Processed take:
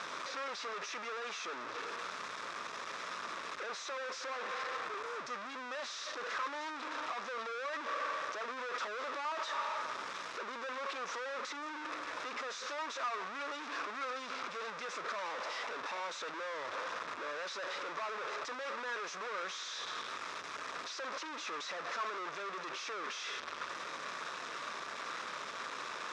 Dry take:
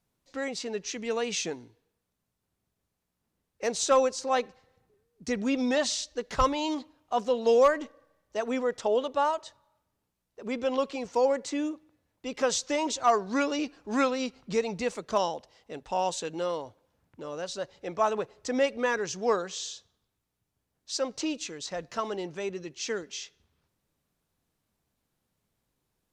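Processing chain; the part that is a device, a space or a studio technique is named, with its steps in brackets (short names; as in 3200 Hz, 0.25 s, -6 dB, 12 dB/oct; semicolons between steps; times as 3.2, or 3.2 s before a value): bell 73 Hz +5 dB 0.33 oct; 11.13–12.82 notches 60/120/180/240/300/360/420 Hz; home computer beeper (infinite clipping; speaker cabinet 780–4600 Hz, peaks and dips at 780 Hz -9 dB, 1200 Hz +6 dB, 2100 Hz -3 dB, 3000 Hz -9 dB, 4400 Hz -9 dB); gain -2.5 dB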